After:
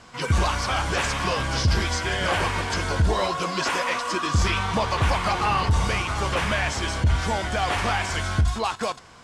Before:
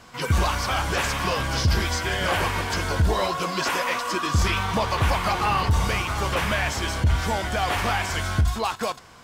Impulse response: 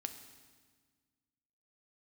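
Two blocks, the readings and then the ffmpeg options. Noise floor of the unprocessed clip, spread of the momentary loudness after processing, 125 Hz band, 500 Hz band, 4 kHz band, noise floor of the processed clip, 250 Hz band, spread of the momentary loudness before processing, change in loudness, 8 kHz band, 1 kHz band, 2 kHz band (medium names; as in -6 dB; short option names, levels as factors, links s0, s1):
-42 dBFS, 3 LU, 0.0 dB, 0.0 dB, 0.0 dB, -42 dBFS, 0.0 dB, 3 LU, 0.0 dB, -0.5 dB, 0.0 dB, 0.0 dB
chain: -af "lowpass=f=10000:w=0.5412,lowpass=f=10000:w=1.3066"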